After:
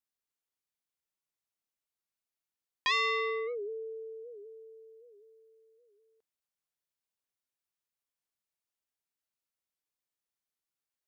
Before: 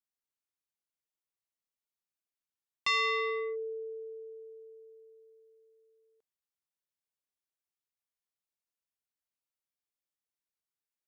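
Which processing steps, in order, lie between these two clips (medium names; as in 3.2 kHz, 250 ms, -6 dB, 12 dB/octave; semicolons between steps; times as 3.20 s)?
warped record 78 rpm, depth 160 cents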